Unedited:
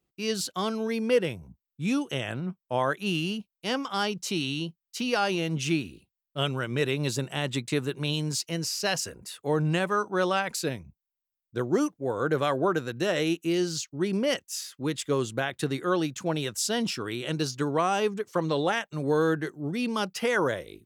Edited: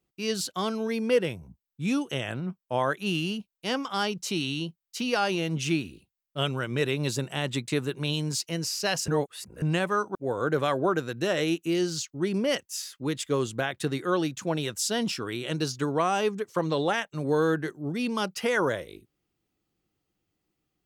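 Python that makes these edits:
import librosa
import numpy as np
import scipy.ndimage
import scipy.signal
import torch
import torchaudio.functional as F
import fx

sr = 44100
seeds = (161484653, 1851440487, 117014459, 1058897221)

y = fx.edit(x, sr, fx.reverse_span(start_s=9.08, length_s=0.54),
    fx.cut(start_s=10.15, length_s=1.79), tone=tone)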